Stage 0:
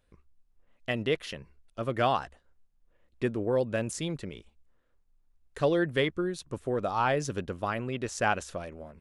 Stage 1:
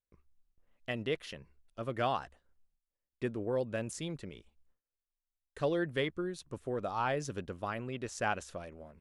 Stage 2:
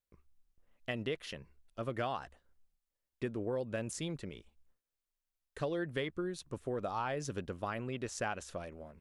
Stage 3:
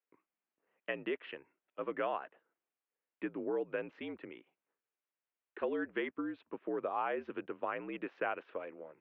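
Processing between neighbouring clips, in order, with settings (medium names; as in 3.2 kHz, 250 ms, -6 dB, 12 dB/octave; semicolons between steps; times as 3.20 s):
gate with hold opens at -55 dBFS; trim -6 dB
compression, threshold -33 dBFS, peak gain reduction 7 dB; trim +1 dB
mistuned SSB -60 Hz 340–2800 Hz; trim +1.5 dB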